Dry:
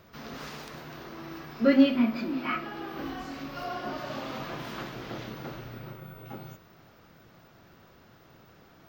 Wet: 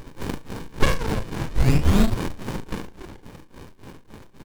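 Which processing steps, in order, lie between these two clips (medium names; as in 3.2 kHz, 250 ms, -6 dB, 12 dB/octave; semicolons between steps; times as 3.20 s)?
high-pass 260 Hz 24 dB/octave; treble shelf 5.2 kHz +11.5 dB; reverse; upward compressor, threshold -44 dBFS; reverse; painted sound rise, 3.02–4.28 s, 890–2400 Hz -20 dBFS; tremolo 1.8 Hz, depth 96%; flange 1.7 Hz, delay 8.4 ms, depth 4.4 ms, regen -27%; feedback delay 73 ms, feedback 38%, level -10 dB; speed mistake 7.5 ips tape played at 15 ips; loudness maximiser +20.5 dB; sliding maximum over 65 samples; trim +1 dB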